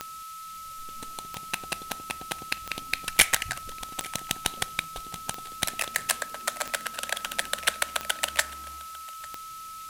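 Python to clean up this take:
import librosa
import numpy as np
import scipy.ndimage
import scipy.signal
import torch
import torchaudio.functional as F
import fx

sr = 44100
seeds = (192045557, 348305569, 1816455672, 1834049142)

y = fx.fix_declick_ar(x, sr, threshold=10.0)
y = fx.notch(y, sr, hz=1300.0, q=30.0)
y = fx.noise_reduce(y, sr, print_start_s=0.04, print_end_s=0.54, reduce_db=30.0)
y = fx.fix_echo_inverse(y, sr, delay_ms=848, level_db=-23.0)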